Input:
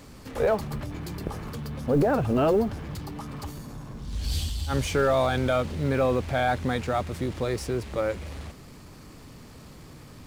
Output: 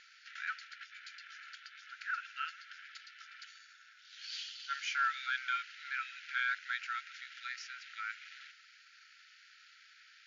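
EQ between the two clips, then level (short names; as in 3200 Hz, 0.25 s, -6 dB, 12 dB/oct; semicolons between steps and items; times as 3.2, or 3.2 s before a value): brick-wall FIR band-pass 1300–7200 Hz; air absorption 140 m; dynamic EQ 3600 Hz, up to -4 dB, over -54 dBFS, Q 4; 0.0 dB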